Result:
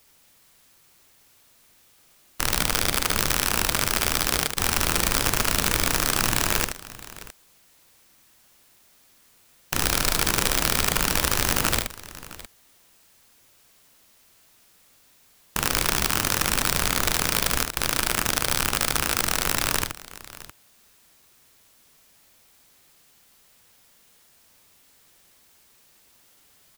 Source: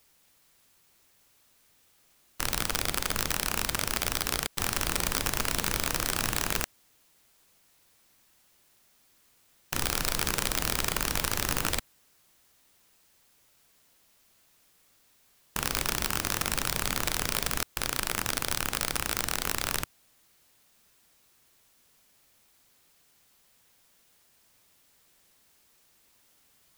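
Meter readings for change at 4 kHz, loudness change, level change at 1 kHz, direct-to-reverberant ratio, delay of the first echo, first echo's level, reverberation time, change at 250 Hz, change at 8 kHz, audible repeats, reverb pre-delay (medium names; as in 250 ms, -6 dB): +6.5 dB, +6.5 dB, +6.5 dB, no reverb, 75 ms, -6.0 dB, no reverb, +6.5 dB, +6.5 dB, 2, no reverb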